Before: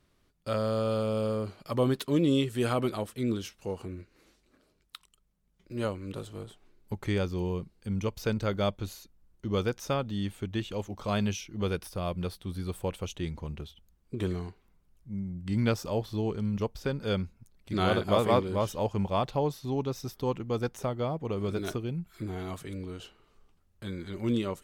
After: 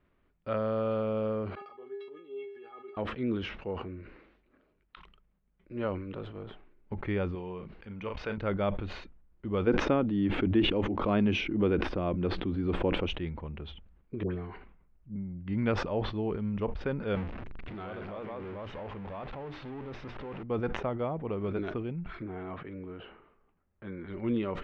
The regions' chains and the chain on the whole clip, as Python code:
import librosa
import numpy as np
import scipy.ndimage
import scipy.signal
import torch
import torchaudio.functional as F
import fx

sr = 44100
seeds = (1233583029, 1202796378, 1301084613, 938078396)

y = fx.chain(x, sr, fx.highpass(hz=260.0, slope=12),
    fx.stiff_resonator(f0_hz=400.0, decay_s=0.37, stiffness=0.008), at=(1.55, 2.97))
y = fx.chain(y, sr, fx.low_shelf(hz=470.0, db=-10.0),
    fx.doubler(ms=38.0, db=-10.0),
    fx.pre_swell(db_per_s=130.0), at=(7.35, 8.38))
y = fx.chain(y, sr, fx.peak_eq(hz=300.0, db=11.5, octaves=0.98),
    fx.pre_swell(db_per_s=68.0), at=(9.67, 13.07))
y = fx.chain(y, sr, fx.high_shelf(hz=4700.0, db=-12.0),
    fx.dispersion(late='highs', ms=83.0, hz=1000.0), at=(14.23, 15.16))
y = fx.chain(y, sr, fx.zero_step(step_db=-26.0),
    fx.hum_notches(base_hz=60, count=7),
    fx.level_steps(step_db=19), at=(17.15, 20.43))
y = fx.chain(y, sr, fx.lowpass(hz=2400.0, slope=12),
    fx.low_shelf(hz=75.0, db=-11.5), at=(22.22, 24.08))
y = scipy.signal.sosfilt(scipy.signal.butter(4, 2600.0, 'lowpass', fs=sr, output='sos'), y)
y = fx.peak_eq(y, sr, hz=120.0, db=-4.5, octaves=0.78)
y = fx.sustainer(y, sr, db_per_s=62.0)
y = y * librosa.db_to_amplitude(-1.0)